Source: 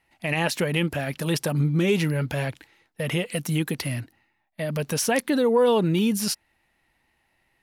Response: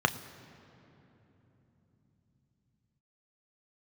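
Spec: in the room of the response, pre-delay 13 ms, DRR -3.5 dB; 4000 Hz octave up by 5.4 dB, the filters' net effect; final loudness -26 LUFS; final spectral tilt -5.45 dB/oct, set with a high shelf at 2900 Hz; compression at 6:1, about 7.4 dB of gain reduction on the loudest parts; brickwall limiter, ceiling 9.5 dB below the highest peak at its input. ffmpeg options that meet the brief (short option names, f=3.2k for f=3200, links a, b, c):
-filter_complex "[0:a]highshelf=f=2.9k:g=4,equalizer=f=4k:t=o:g=4,acompressor=threshold=-24dB:ratio=6,alimiter=limit=-20dB:level=0:latency=1,asplit=2[a][b];[1:a]atrim=start_sample=2205,adelay=13[c];[b][c]afir=irnorm=-1:irlink=0,volume=-8.5dB[d];[a][d]amix=inputs=2:normalize=0,volume=-1dB"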